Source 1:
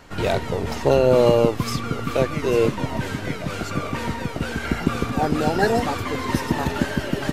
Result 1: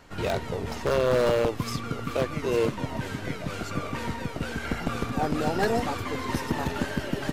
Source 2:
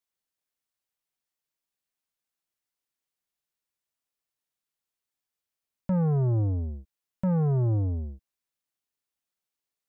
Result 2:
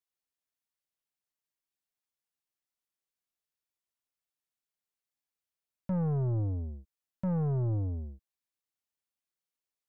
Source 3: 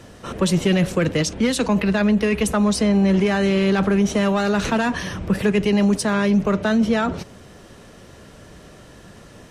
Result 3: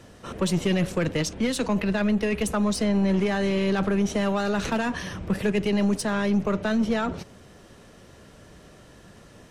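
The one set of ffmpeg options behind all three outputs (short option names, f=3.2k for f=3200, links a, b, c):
-af "aeval=exprs='0.316*(abs(mod(val(0)/0.316+3,4)-2)-1)':c=same,aeval=exprs='0.316*(cos(1*acos(clip(val(0)/0.316,-1,1)))-cos(1*PI/2))+0.0224*(cos(4*acos(clip(val(0)/0.316,-1,1)))-cos(4*PI/2))':c=same,volume=-5.5dB"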